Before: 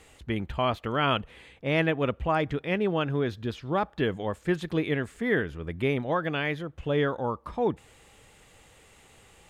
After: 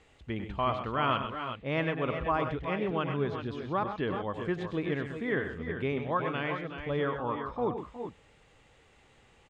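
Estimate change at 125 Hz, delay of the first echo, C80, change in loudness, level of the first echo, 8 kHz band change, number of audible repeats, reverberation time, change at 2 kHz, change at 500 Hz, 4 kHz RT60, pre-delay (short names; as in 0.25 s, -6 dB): -4.5 dB, 98 ms, none, -4.0 dB, -10.0 dB, n/a, 3, none, -4.5 dB, -4.0 dB, none, none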